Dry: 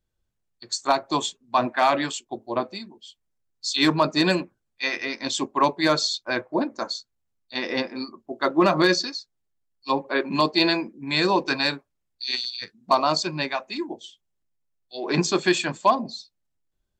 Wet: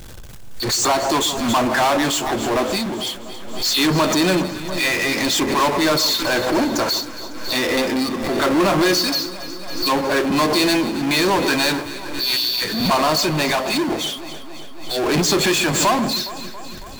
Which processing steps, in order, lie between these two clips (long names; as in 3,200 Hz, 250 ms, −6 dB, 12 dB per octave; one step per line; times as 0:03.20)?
power curve on the samples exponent 0.35
delay that swaps between a low-pass and a high-pass 138 ms, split 1,300 Hz, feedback 81%, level −12.5 dB
background raised ahead of every attack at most 45 dB per second
level −3 dB